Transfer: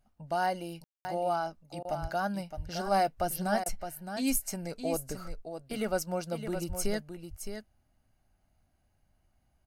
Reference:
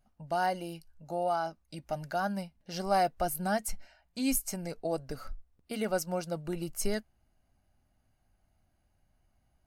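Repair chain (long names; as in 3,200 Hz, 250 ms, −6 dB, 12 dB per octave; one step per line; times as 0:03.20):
0:02.01–0:02.13: high-pass filter 140 Hz 24 dB per octave
0:02.56–0:02.68: high-pass filter 140 Hz 24 dB per octave
0:06.68–0:06.80: high-pass filter 140 Hz 24 dB per octave
ambience match 0:00.84–0:01.05
repair the gap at 0:01.83/0:03.64, 18 ms
echo removal 615 ms −8.5 dB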